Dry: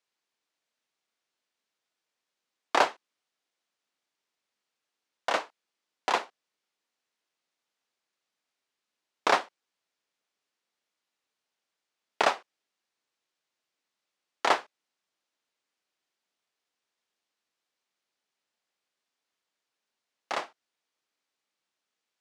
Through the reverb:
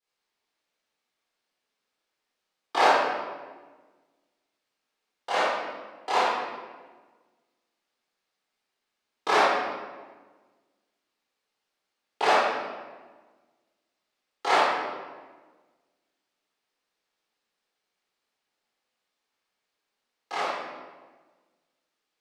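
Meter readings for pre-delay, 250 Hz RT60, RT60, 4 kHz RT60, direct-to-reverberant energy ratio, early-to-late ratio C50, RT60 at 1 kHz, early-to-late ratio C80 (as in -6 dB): 18 ms, 1.7 s, 1.4 s, 0.95 s, -13.5 dB, -4.5 dB, 1.3 s, -0.5 dB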